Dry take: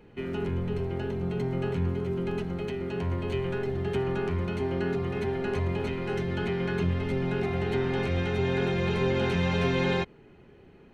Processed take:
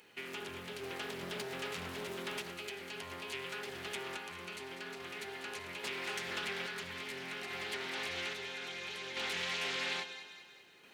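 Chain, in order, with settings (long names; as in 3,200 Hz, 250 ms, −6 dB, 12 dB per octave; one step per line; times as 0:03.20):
first difference
downward compressor 2 to 1, threshold −56 dBFS, peak gain reduction 9.5 dB
sample-and-hold tremolo 1.2 Hz
echo with a time of its own for lows and highs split 630 Hz, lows 117 ms, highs 196 ms, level −10.5 dB
highs frequency-modulated by the lows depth 0.47 ms
level +16.5 dB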